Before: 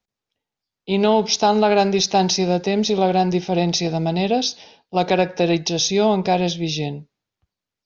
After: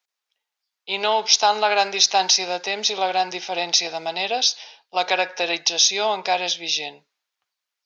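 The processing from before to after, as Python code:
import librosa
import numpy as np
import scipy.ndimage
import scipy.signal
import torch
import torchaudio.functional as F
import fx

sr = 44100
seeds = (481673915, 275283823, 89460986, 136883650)

y = scipy.signal.sosfilt(scipy.signal.butter(2, 980.0, 'highpass', fs=sr, output='sos'), x)
y = y * librosa.db_to_amplitude(4.5)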